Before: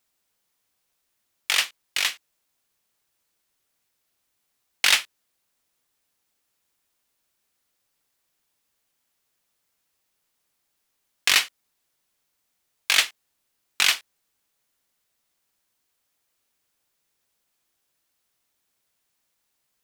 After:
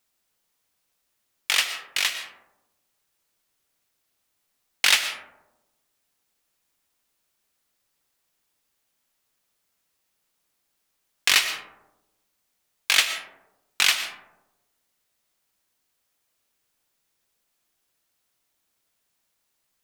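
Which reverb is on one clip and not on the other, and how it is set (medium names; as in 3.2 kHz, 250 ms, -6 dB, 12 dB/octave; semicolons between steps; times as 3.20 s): algorithmic reverb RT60 1 s, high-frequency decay 0.3×, pre-delay 80 ms, DRR 8.5 dB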